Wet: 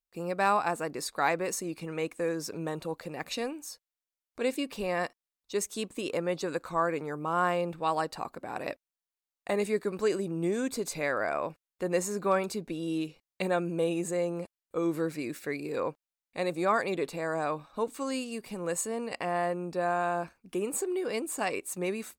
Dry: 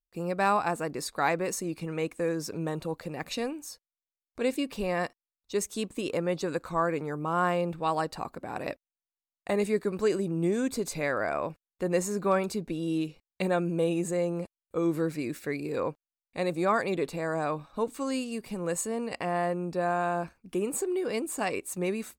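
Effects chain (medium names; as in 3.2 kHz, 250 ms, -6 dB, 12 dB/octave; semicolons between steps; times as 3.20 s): bass shelf 210 Hz -7.5 dB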